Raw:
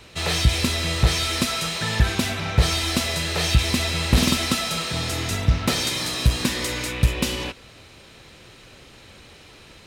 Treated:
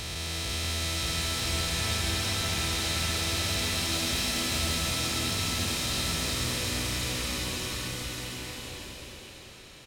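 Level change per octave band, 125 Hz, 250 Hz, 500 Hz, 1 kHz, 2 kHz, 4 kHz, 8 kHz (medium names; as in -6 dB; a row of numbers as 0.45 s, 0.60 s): -10.0 dB, -9.0 dB, -7.5 dB, -6.5 dB, -5.5 dB, -4.0 dB, -2.0 dB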